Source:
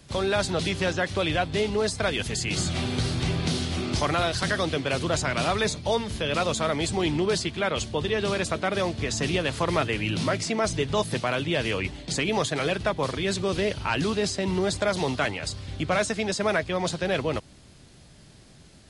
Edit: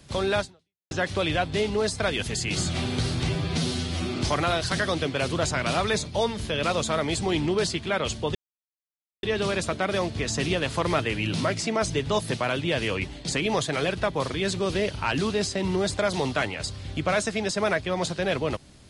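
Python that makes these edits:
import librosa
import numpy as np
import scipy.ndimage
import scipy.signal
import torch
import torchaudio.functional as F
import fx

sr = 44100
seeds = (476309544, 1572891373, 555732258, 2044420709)

y = fx.edit(x, sr, fx.fade_out_span(start_s=0.39, length_s=0.52, curve='exp'),
    fx.stretch_span(start_s=3.29, length_s=0.58, factor=1.5),
    fx.insert_silence(at_s=8.06, length_s=0.88), tone=tone)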